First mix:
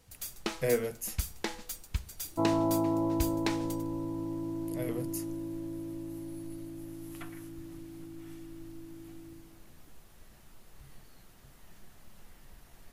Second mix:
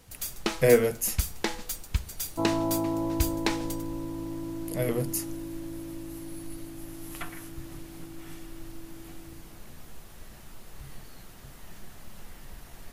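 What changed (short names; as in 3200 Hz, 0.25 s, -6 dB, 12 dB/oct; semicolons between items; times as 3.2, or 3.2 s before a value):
speech +9.0 dB; first sound +5.5 dB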